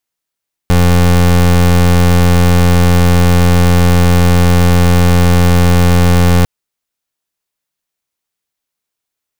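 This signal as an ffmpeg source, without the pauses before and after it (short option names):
-f lavfi -i "aevalsrc='0.422*(2*lt(mod(87.6*t,1),0.27)-1)':d=5.75:s=44100"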